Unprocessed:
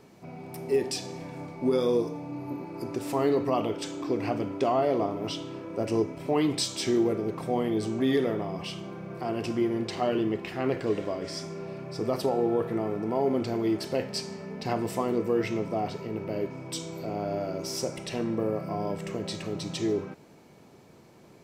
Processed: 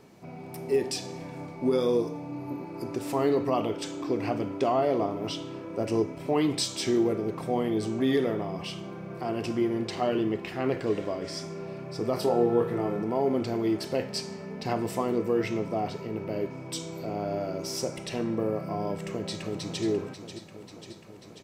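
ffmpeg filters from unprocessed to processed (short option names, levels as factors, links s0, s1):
-filter_complex "[0:a]asettb=1/sr,asplit=3[s0][s1][s2];[s0]atrim=end=12.144[s3];[s1]atrim=start=12.14:end=13.03,asetpts=PTS-STARTPTS,afade=t=in:d=0.004:c=qsin,afade=t=out:st=0.886:d=0.004:c=qsin,asplit=2[s4][s5];[s5]adelay=25,volume=0.631[s6];[s4][s6]amix=inputs=2:normalize=0,atrim=end_sample=39249[s7];[s2]atrim=start=13.026[s8];[s3][s7]acrossfade=d=0.004:c1=hsin:c2=qsin[s9];[s9][s8]acrossfade=d=0.004:c1=qsin:c2=hsin,asplit=2[s10][s11];[s11]afade=t=in:st=18.92:d=0.01,afade=t=out:st=19.84:d=0.01,aecho=0:1:540|1080|1620|2160|2700|3240|3780|4320|4860|5400:0.316228|0.221359|0.154952|0.108466|0.0759263|0.0531484|0.0372039|0.0260427|0.0182299|0.0127609[s12];[s10][s12]amix=inputs=2:normalize=0"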